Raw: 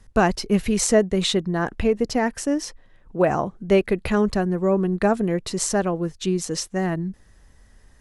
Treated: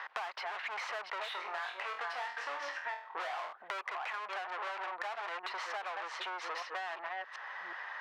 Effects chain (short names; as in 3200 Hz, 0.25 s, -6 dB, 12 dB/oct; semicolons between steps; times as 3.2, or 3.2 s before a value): reverse delay 0.368 s, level -11.5 dB; air absorption 320 m; overdrive pedal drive 36 dB, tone 1500 Hz, clips at -5 dBFS; HPF 880 Hz 24 dB/oct; 1.3–3.53 flutter echo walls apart 4.2 m, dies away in 0.29 s; compressor 5:1, threshold -31 dBFS, peak gain reduction 16 dB; high shelf 5400 Hz -9.5 dB; three-band squash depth 70%; gain -6.5 dB